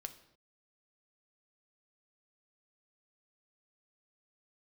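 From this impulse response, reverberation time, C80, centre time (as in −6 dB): non-exponential decay, 16.0 dB, 7 ms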